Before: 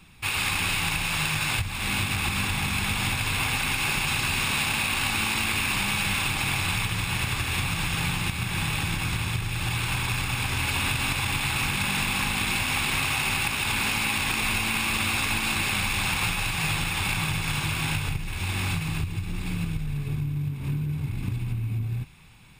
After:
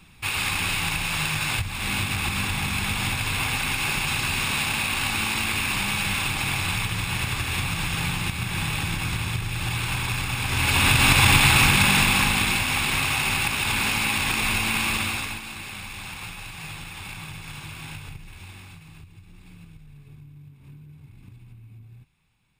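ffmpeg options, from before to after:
ffmpeg -i in.wav -af "volume=11dB,afade=type=in:start_time=10.43:duration=0.84:silence=0.298538,afade=type=out:start_time=11.27:duration=1.37:silence=0.354813,afade=type=out:start_time=14.87:duration=0.56:silence=0.237137,afade=type=out:start_time=18.26:duration=0.41:silence=0.446684" out.wav

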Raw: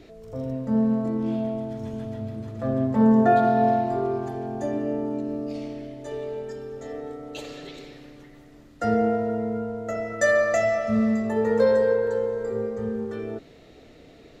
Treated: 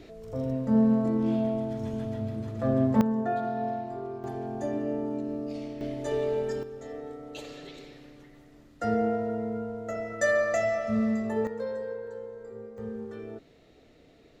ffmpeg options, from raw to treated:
ffmpeg -i in.wav -af "asetnsamples=nb_out_samples=441:pad=0,asendcmd='3.01 volume volume -11dB;4.24 volume volume -3.5dB;5.81 volume volume 4dB;6.63 volume volume -4.5dB;11.47 volume volume -14.5dB;12.78 volume volume -8dB',volume=0dB" out.wav

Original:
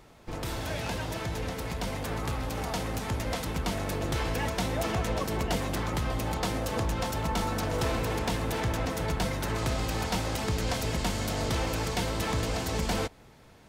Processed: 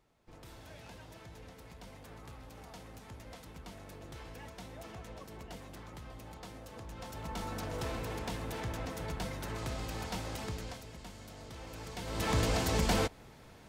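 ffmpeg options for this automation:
ffmpeg -i in.wav -af "volume=10dB,afade=type=in:start_time=6.84:duration=0.7:silence=0.354813,afade=type=out:start_time=10.44:duration=0.41:silence=0.316228,afade=type=in:start_time=11.55:duration=0.49:silence=0.446684,afade=type=in:start_time=12.04:duration=0.33:silence=0.251189" out.wav

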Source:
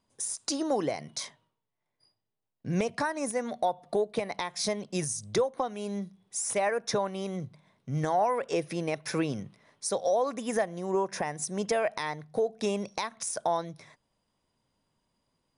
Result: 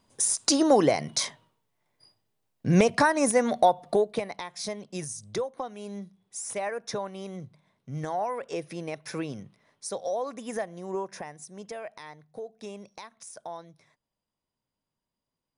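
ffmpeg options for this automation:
ffmpeg -i in.wav -af "volume=8.5dB,afade=type=out:start_time=3.58:duration=0.79:silence=0.237137,afade=type=out:start_time=10.96:duration=0.48:silence=0.446684" out.wav

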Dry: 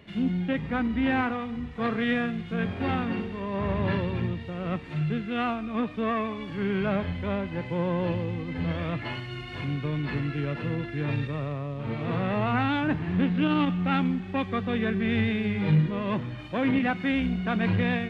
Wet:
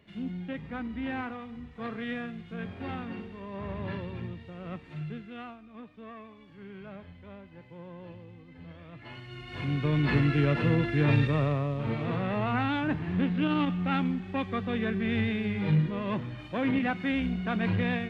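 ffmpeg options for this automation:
ffmpeg -i in.wav -af "volume=14dB,afade=type=out:start_time=5.01:duration=0.57:silence=0.354813,afade=type=in:start_time=8.91:duration=0.54:silence=0.237137,afade=type=in:start_time=9.45:duration=0.67:silence=0.298538,afade=type=out:start_time=11.43:duration=0.74:silence=0.398107" out.wav

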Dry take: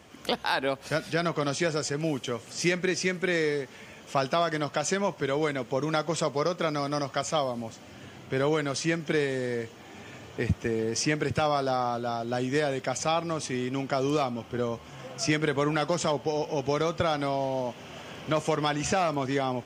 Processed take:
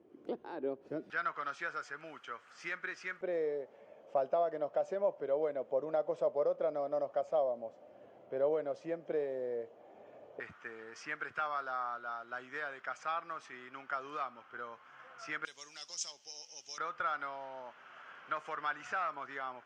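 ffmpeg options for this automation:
ffmpeg -i in.wav -af "asetnsamples=nb_out_samples=441:pad=0,asendcmd='1.1 bandpass f 1400;3.21 bandpass f 580;10.4 bandpass f 1400;15.45 bandpass f 5800;16.78 bandpass f 1400',bandpass=frequency=360:width_type=q:width=4:csg=0" out.wav

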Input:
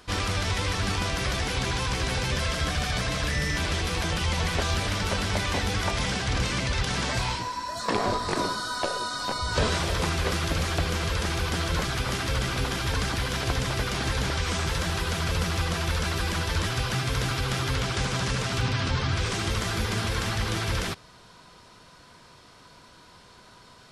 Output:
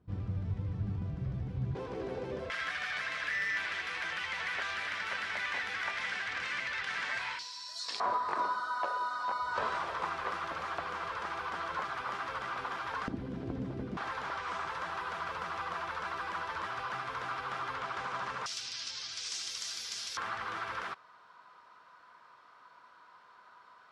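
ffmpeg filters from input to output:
ffmpeg -i in.wav -af "asetnsamples=nb_out_samples=441:pad=0,asendcmd='1.75 bandpass f 410;2.5 bandpass f 1800;7.39 bandpass f 4700;8 bandpass f 1100;13.08 bandpass f 250;13.97 bandpass f 1100;18.46 bandpass f 5500;20.17 bandpass f 1200',bandpass=frequency=130:width_type=q:width=2.2:csg=0" out.wav

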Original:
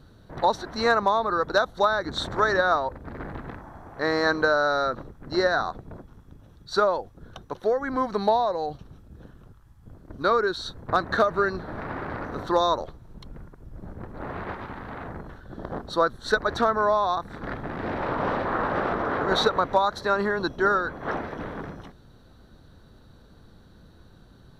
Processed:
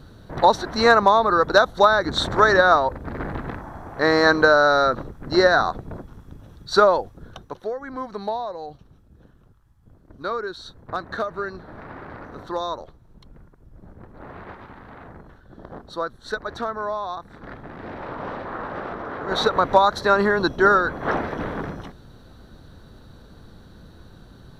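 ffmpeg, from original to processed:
ffmpeg -i in.wav -af "volume=18dB,afade=type=out:start_time=6.98:duration=0.73:silence=0.251189,afade=type=in:start_time=19.22:duration=0.52:silence=0.266073" out.wav

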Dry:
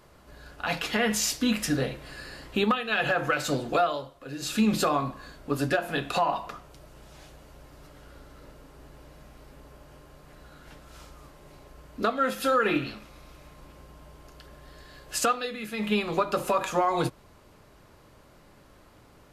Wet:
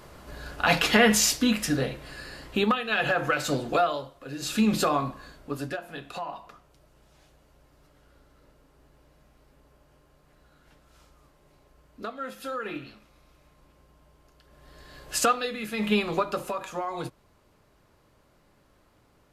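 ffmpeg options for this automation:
ffmpeg -i in.wav -af "volume=19.5dB,afade=type=out:start_time=0.92:duration=0.65:silence=0.446684,afade=type=out:start_time=5:duration=0.83:silence=0.298538,afade=type=in:start_time=14.46:duration=0.59:silence=0.251189,afade=type=out:start_time=15.97:duration=0.59:silence=0.334965" out.wav

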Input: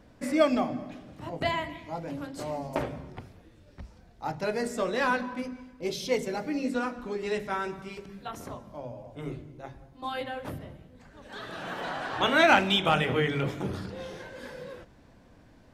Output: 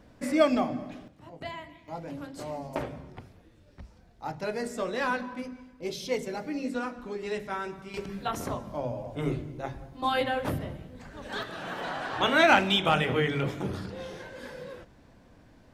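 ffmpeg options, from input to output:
ffmpeg -i in.wav -af "asetnsamples=nb_out_samples=441:pad=0,asendcmd='1.08 volume volume -10dB;1.88 volume volume -2.5dB;7.94 volume volume 7dB;11.43 volume volume 0dB',volume=0.5dB" out.wav

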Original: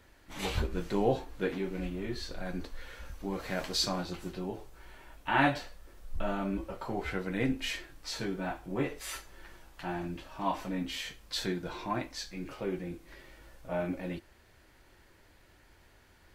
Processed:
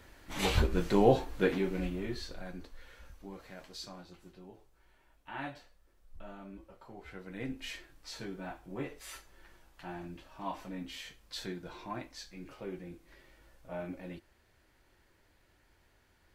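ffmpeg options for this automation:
ffmpeg -i in.wav -af "volume=12dB,afade=type=out:start_time=1.42:duration=1.14:silence=0.251189,afade=type=out:start_time=3.06:duration=0.49:silence=0.446684,afade=type=in:start_time=7:duration=0.71:silence=0.398107" out.wav

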